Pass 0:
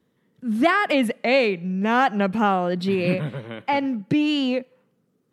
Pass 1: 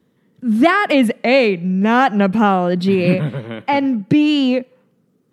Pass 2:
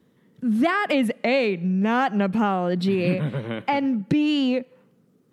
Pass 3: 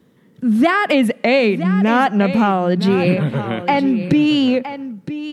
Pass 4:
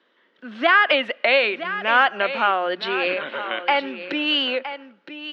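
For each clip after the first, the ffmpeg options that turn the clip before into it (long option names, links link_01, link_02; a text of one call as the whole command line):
ffmpeg -i in.wav -af "equalizer=frequency=200:width=0.62:gain=3.5,volume=4.5dB" out.wav
ffmpeg -i in.wav -af "acompressor=threshold=-24dB:ratio=2" out.wav
ffmpeg -i in.wav -af "aecho=1:1:966:0.251,volume=6.5dB" out.wav
ffmpeg -i in.wav -af "highpass=frequency=430:width=0.5412,highpass=frequency=430:width=1.3066,equalizer=frequency=450:width_type=q:width=4:gain=-10,equalizer=frequency=790:width_type=q:width=4:gain=-5,equalizer=frequency=1500:width_type=q:width=4:gain=5,equalizer=frequency=3000:width_type=q:width=4:gain=5,lowpass=frequency=4200:width=0.5412,lowpass=frequency=4200:width=1.3066" out.wav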